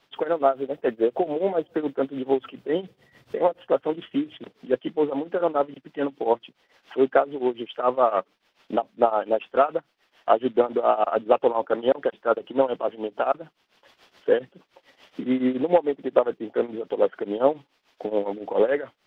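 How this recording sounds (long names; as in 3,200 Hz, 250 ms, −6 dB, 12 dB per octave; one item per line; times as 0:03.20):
tremolo triangle 7 Hz, depth 90%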